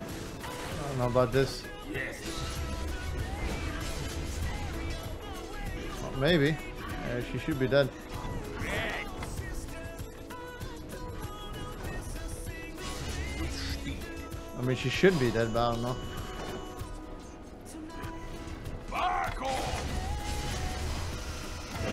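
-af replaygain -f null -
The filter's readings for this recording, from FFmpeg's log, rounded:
track_gain = +12.6 dB
track_peak = 0.236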